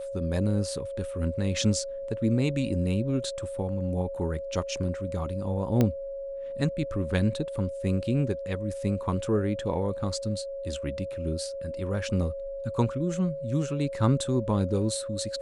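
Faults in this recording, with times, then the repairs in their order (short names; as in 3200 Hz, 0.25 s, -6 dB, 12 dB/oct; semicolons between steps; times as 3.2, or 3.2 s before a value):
tone 550 Hz -33 dBFS
5.81 pop -11 dBFS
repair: de-click; notch 550 Hz, Q 30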